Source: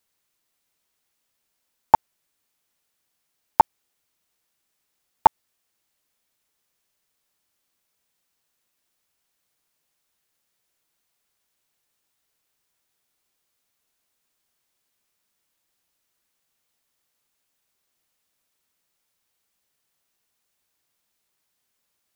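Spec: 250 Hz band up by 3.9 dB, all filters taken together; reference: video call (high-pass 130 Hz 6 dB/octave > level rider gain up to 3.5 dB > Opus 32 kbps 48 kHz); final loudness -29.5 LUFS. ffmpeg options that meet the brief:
-af "highpass=f=130:p=1,equalizer=f=250:t=o:g=6.5,dynaudnorm=m=1.5,volume=0.398" -ar 48000 -c:a libopus -b:a 32k

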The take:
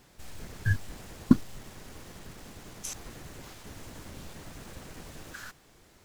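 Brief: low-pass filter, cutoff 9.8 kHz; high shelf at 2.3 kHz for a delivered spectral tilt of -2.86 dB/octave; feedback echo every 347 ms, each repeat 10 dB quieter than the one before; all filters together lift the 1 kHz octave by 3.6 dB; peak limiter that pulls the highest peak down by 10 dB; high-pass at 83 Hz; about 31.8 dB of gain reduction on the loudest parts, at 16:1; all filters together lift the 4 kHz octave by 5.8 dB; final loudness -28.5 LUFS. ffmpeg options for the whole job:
-af "highpass=83,lowpass=9800,equalizer=f=1000:t=o:g=3.5,highshelf=f=2300:g=3.5,equalizer=f=4000:t=o:g=4,acompressor=threshold=0.00501:ratio=16,alimiter=level_in=7.5:limit=0.0631:level=0:latency=1,volume=0.133,aecho=1:1:347|694|1041|1388:0.316|0.101|0.0324|0.0104,volume=13.3"

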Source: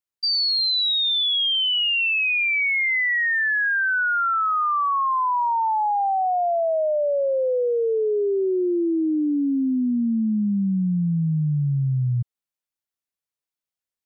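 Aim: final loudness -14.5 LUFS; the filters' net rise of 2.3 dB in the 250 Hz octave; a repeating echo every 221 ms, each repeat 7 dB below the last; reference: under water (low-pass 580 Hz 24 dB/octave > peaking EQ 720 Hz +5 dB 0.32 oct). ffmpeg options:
-af "lowpass=f=580:w=0.5412,lowpass=f=580:w=1.3066,equalizer=f=250:t=o:g=3,equalizer=f=720:t=o:w=0.32:g=5,aecho=1:1:221|442|663|884|1105:0.447|0.201|0.0905|0.0407|0.0183,volume=2.11"

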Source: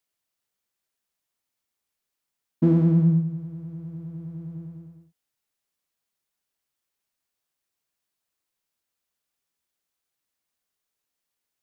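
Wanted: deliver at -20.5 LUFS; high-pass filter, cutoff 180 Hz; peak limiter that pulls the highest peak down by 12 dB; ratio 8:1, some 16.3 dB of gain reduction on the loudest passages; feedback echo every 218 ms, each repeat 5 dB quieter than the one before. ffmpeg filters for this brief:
-af "highpass=180,acompressor=threshold=0.0178:ratio=8,alimiter=level_in=3.98:limit=0.0631:level=0:latency=1,volume=0.251,aecho=1:1:218|436|654|872|1090|1308|1526:0.562|0.315|0.176|0.0988|0.0553|0.031|0.0173,volume=10"

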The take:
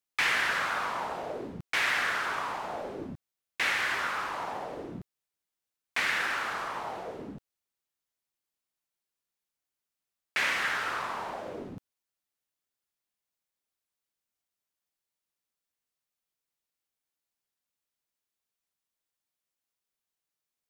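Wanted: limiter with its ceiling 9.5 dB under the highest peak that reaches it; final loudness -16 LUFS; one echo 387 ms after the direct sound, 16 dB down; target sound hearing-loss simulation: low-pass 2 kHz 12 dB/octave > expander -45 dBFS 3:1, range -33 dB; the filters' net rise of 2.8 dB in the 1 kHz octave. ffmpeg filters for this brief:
-af "equalizer=f=1000:t=o:g=4,alimiter=limit=0.0631:level=0:latency=1,lowpass=2000,aecho=1:1:387:0.158,agate=range=0.0224:threshold=0.00562:ratio=3,volume=8.91"

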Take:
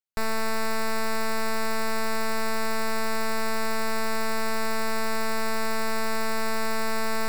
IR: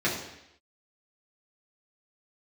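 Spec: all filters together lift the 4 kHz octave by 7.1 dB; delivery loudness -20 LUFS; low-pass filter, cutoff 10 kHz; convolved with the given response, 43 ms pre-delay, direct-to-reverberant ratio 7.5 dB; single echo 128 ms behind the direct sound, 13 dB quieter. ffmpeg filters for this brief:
-filter_complex "[0:a]lowpass=10000,equalizer=f=4000:t=o:g=8.5,aecho=1:1:128:0.224,asplit=2[s0][s1];[1:a]atrim=start_sample=2205,adelay=43[s2];[s1][s2]afir=irnorm=-1:irlink=0,volume=0.1[s3];[s0][s3]amix=inputs=2:normalize=0,volume=1.88"

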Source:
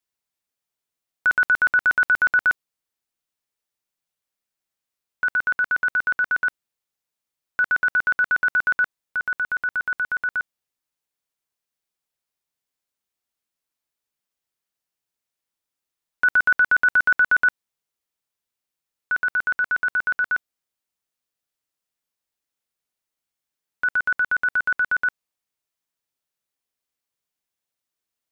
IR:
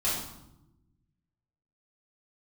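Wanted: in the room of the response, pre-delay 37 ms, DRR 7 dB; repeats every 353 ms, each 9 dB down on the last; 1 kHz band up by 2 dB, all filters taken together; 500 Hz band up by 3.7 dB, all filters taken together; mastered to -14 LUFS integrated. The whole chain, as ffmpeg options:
-filter_complex "[0:a]equalizer=f=500:t=o:g=3.5,equalizer=f=1000:t=o:g=3.5,aecho=1:1:353|706|1059|1412:0.355|0.124|0.0435|0.0152,asplit=2[s0][s1];[1:a]atrim=start_sample=2205,adelay=37[s2];[s1][s2]afir=irnorm=-1:irlink=0,volume=0.158[s3];[s0][s3]amix=inputs=2:normalize=0,volume=2.11"

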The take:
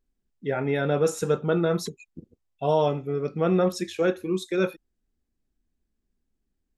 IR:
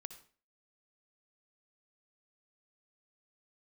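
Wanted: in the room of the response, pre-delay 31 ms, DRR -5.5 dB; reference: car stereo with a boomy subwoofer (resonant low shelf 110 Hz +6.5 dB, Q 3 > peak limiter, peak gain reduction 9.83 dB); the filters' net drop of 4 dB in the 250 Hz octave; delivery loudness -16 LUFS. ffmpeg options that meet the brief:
-filter_complex "[0:a]equalizer=f=250:t=o:g=-4,asplit=2[s0][s1];[1:a]atrim=start_sample=2205,adelay=31[s2];[s1][s2]afir=irnorm=-1:irlink=0,volume=3.35[s3];[s0][s3]amix=inputs=2:normalize=0,lowshelf=f=110:t=q:w=3:g=6.5,volume=2.82,alimiter=limit=0.501:level=0:latency=1"

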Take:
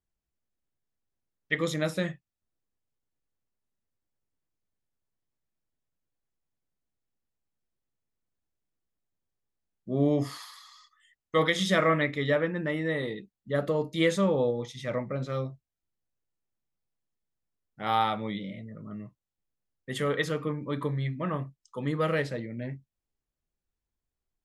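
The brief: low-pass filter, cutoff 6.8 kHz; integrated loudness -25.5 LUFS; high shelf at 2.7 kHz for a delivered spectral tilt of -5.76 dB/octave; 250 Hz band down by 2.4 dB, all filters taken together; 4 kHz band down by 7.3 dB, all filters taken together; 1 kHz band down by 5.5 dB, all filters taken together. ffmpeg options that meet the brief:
-af "lowpass=6800,equalizer=f=250:t=o:g=-3,equalizer=f=1000:t=o:g=-6.5,highshelf=f=2700:g=-3,equalizer=f=4000:t=o:g=-6,volume=2.11"

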